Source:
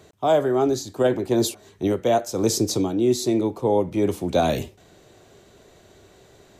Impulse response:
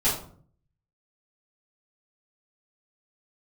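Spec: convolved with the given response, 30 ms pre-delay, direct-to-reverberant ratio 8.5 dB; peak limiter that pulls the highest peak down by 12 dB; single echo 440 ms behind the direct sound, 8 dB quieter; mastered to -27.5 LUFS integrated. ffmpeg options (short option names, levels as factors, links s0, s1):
-filter_complex "[0:a]alimiter=limit=0.1:level=0:latency=1,aecho=1:1:440:0.398,asplit=2[s0][s1];[1:a]atrim=start_sample=2205,adelay=30[s2];[s1][s2]afir=irnorm=-1:irlink=0,volume=0.0944[s3];[s0][s3]amix=inputs=2:normalize=0"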